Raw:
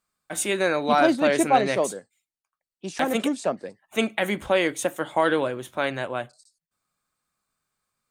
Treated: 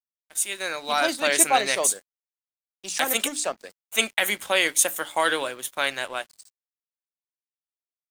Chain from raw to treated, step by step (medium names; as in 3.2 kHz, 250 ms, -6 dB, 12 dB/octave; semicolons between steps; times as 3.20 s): fade-in on the opening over 1.37 s; tilt EQ +4.5 dB/octave; hum notches 60/120/180/240/300 Hz; crossover distortion -46 dBFS